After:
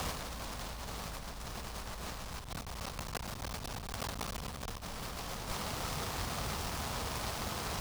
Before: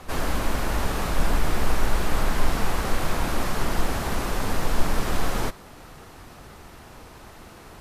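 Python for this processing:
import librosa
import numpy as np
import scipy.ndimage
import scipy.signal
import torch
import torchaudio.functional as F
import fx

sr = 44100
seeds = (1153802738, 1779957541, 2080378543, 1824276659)

y = fx.cycle_switch(x, sr, every=3, mode='muted', at=(2.24, 4.8), fade=0.02)
y = scipy.signal.sosfilt(scipy.signal.butter(2, 41.0, 'highpass', fs=sr, output='sos'), y)
y = fx.peak_eq(y, sr, hz=1100.0, db=3.0, octaves=0.43)
y = fx.over_compress(y, sr, threshold_db=-38.0, ratio=-1.0)
y = fx.peak_eq(y, sr, hz=330.0, db=-8.0, octaves=0.72)
y = fx.noise_mod_delay(y, sr, seeds[0], noise_hz=3400.0, depth_ms=0.11)
y = F.gain(torch.from_numpy(y), -1.5).numpy()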